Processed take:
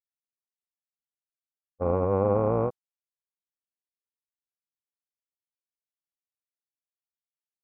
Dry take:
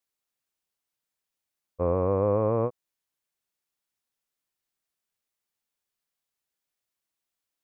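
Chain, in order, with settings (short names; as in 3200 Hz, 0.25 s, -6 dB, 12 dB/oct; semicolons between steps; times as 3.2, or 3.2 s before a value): expander -21 dBFS; low-pass opened by the level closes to 940 Hz, open at -27 dBFS; in parallel at -3 dB: negative-ratio compressor -38 dBFS, ratio -1; on the sum: AM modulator 290 Hz, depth 40%; gain +3 dB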